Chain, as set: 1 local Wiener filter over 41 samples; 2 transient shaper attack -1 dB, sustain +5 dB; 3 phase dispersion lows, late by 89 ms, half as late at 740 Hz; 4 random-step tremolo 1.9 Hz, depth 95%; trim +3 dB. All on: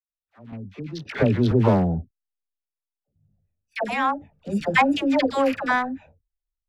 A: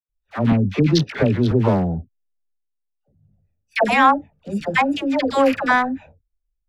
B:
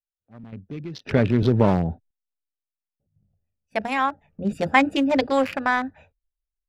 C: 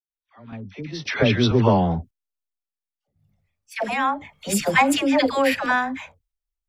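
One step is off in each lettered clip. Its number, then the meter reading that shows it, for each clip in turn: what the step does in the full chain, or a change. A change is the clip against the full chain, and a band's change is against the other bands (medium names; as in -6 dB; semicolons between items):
4, momentary loudness spread change -5 LU; 3, crest factor change +2.0 dB; 1, 4 kHz band +5.0 dB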